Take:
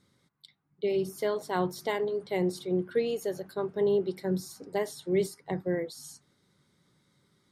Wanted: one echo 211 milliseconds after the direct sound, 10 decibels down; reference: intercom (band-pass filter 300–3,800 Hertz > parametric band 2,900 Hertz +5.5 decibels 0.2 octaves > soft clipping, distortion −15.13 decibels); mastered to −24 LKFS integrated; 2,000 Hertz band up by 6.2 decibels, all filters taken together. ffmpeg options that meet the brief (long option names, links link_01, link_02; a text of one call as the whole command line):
ffmpeg -i in.wav -af "highpass=300,lowpass=3800,equalizer=frequency=2000:width_type=o:gain=7,equalizer=frequency=2900:width_type=o:width=0.2:gain=5.5,aecho=1:1:211:0.316,asoftclip=threshold=-23.5dB,volume=9.5dB" out.wav